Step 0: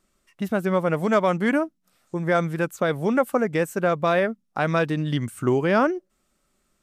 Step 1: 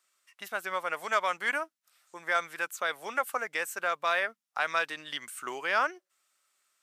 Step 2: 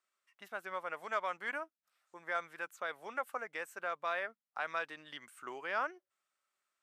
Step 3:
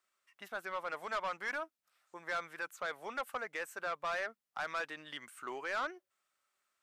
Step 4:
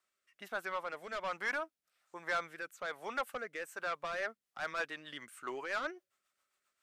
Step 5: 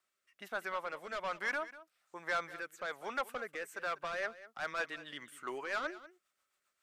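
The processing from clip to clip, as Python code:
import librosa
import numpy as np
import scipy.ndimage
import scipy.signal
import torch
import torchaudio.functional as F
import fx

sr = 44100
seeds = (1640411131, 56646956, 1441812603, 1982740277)

y1 = scipy.signal.sosfilt(scipy.signal.butter(2, 1200.0, 'highpass', fs=sr, output='sos'), x)
y2 = fx.high_shelf(y1, sr, hz=3100.0, db=-11.5)
y2 = y2 * 10.0 ** (-6.5 / 20.0)
y3 = 10.0 ** (-34.0 / 20.0) * np.tanh(y2 / 10.0 ** (-34.0 / 20.0))
y3 = y3 * 10.0 ** (3.5 / 20.0)
y4 = fx.rotary_switch(y3, sr, hz=1.2, then_hz=7.5, switch_at_s=3.84)
y4 = y4 * 10.0 ** (3.0 / 20.0)
y5 = y4 + 10.0 ** (-16.5 / 20.0) * np.pad(y4, (int(194 * sr / 1000.0), 0))[:len(y4)]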